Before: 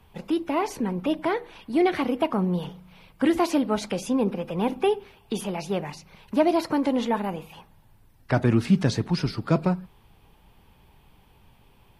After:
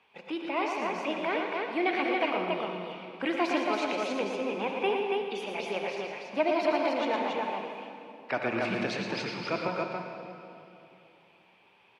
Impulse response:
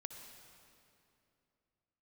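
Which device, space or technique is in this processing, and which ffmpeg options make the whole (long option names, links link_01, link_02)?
station announcement: -filter_complex "[0:a]highpass=420,lowpass=4800,equalizer=frequency=2400:width_type=o:width=0.42:gain=9.5,aecho=1:1:113.7|279.9:0.447|0.708[link_01];[1:a]atrim=start_sample=2205[link_02];[link_01][link_02]afir=irnorm=-1:irlink=0"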